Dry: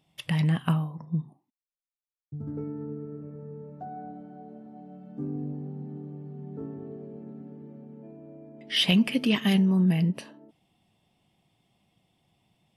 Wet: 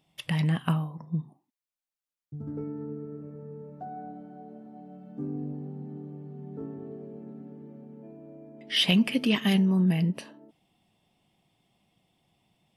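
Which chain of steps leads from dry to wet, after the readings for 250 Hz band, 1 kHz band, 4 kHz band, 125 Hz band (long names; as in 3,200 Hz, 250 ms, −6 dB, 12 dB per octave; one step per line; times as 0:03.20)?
−1.0 dB, 0.0 dB, 0.0 dB, −1.5 dB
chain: parametric band 100 Hz −3.5 dB 1.2 octaves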